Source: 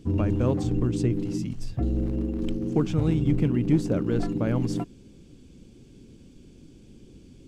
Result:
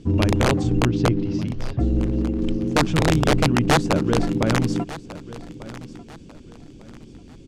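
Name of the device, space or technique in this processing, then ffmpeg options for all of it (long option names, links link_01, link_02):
overflowing digital effects unit: -filter_complex "[0:a]asettb=1/sr,asplit=3[link_01][link_02][link_03];[link_01]atrim=end=0.814[link_04];[link_02]atrim=start=0.81:end=1.87,asetpts=PTS-STARTPTS,afade=type=in:duration=0.004:curve=qsin,afade=type=out:start_time=1.056:duration=0.004:curve=qsin,lowpass=frequency=5300:width=0.5412,lowpass=frequency=5300:width=1.3066[link_05];[link_03]atrim=start=1.866[link_06];[link_04][link_05]acrossfade=duration=0.004:curve1=hsin:curve2=qsin[link_07];[link_07][link_06]acrossfade=duration=0.004:curve1=qsin:curve2=hsin,aeval=exprs='(mod(5.62*val(0)+1,2)-1)/5.62':channel_layout=same,lowpass=8000,aecho=1:1:1194|2388|3582:0.141|0.0438|0.0136,volume=5dB"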